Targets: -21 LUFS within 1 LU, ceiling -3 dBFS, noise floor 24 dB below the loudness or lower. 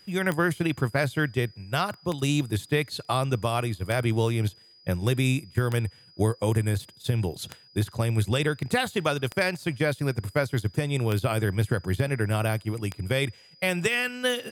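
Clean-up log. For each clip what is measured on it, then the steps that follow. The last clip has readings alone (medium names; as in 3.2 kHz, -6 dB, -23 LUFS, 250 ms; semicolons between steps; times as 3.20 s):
clicks found 8; steady tone 4.9 kHz; tone level -53 dBFS; loudness -27.0 LUFS; peak level -9.5 dBFS; loudness target -21.0 LUFS
-> de-click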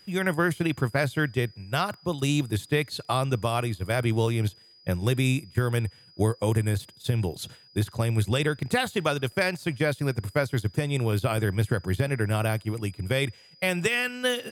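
clicks found 0; steady tone 4.9 kHz; tone level -53 dBFS
-> band-stop 4.9 kHz, Q 30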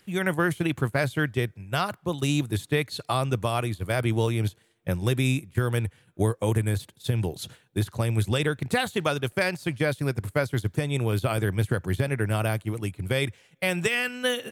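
steady tone not found; loudness -27.0 LUFS; peak level -11.5 dBFS; loudness target -21.0 LUFS
-> trim +6 dB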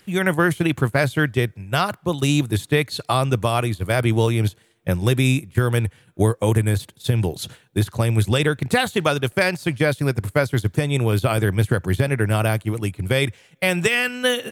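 loudness -21.0 LUFS; peak level -5.5 dBFS; noise floor -57 dBFS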